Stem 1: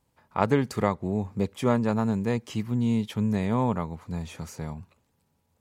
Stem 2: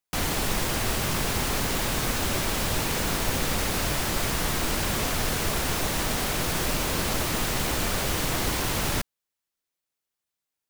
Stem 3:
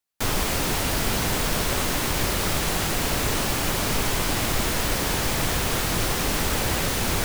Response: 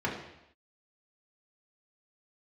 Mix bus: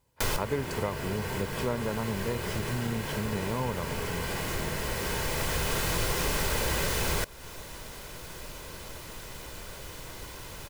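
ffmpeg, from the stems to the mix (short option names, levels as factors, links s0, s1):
-filter_complex "[0:a]volume=0.944,asplit=2[s0][s1];[1:a]adelay=1750,volume=0.15[s2];[2:a]volume=1.33,asplit=2[s3][s4];[s4]volume=0.126[s5];[s1]apad=whole_len=319351[s6];[s3][s6]sidechaincompress=threshold=0.00794:ratio=4:attack=29:release=1170[s7];[3:a]atrim=start_sample=2205[s8];[s5][s8]afir=irnorm=-1:irlink=0[s9];[s0][s2][s7][s9]amix=inputs=4:normalize=0,aecho=1:1:2:0.36,acompressor=threshold=0.0251:ratio=2"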